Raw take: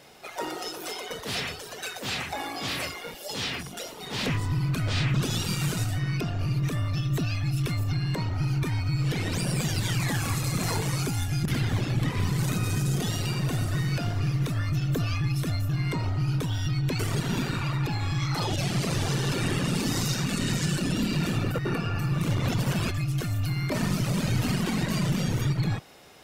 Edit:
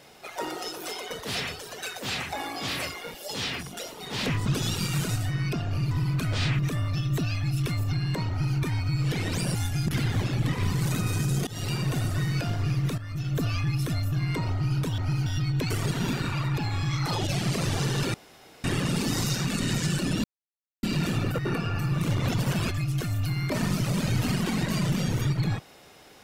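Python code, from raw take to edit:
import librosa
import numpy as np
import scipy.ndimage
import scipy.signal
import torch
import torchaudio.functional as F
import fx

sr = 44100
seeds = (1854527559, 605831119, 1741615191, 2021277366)

y = fx.edit(x, sr, fx.move(start_s=4.46, length_s=0.68, to_s=6.59),
    fx.duplicate(start_s=8.3, length_s=0.28, to_s=16.55),
    fx.cut(start_s=9.55, length_s=1.57),
    fx.fade_in_from(start_s=13.04, length_s=0.29, curve='qsin', floor_db=-23.0),
    fx.fade_in_from(start_s=14.55, length_s=0.44, floor_db=-13.5),
    fx.insert_room_tone(at_s=19.43, length_s=0.5),
    fx.insert_silence(at_s=21.03, length_s=0.59), tone=tone)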